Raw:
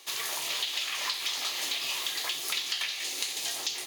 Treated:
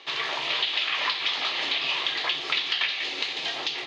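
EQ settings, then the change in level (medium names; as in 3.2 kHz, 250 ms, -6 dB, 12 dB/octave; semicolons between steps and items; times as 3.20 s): low-pass 3.7 kHz 24 dB/octave; +8.0 dB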